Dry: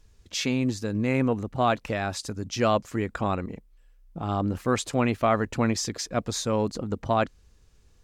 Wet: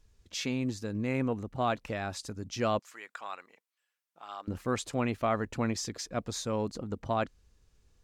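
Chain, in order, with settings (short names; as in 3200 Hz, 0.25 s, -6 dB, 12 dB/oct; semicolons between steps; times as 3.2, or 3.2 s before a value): 2.79–4.48 HPF 1100 Hz 12 dB/oct; gain -6.5 dB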